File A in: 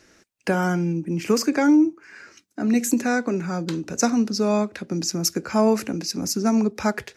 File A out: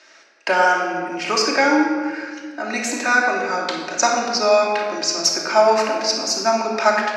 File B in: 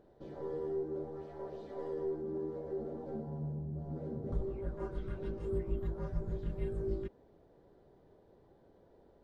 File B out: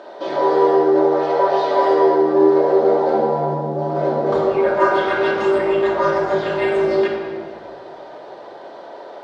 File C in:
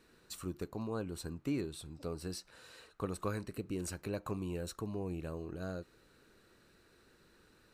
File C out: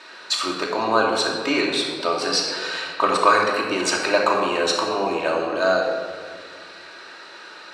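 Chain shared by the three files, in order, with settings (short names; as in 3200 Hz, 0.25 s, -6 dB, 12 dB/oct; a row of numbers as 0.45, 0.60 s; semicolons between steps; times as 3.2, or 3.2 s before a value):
Chebyshev band-pass 740–4700 Hz, order 2; shoebox room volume 2300 m³, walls mixed, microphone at 2.7 m; normalise peaks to -2 dBFS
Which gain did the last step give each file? +7.5, +31.0, +25.0 dB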